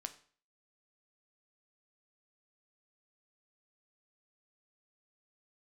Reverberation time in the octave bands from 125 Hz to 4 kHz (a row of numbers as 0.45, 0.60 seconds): 0.45, 0.45, 0.45, 0.45, 0.45, 0.40 seconds